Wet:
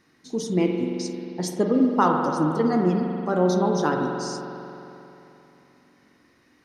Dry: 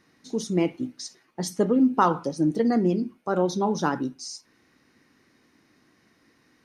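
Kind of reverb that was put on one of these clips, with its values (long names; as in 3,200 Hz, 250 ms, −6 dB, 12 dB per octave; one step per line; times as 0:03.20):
spring reverb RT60 3.1 s, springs 44 ms, chirp 35 ms, DRR 2 dB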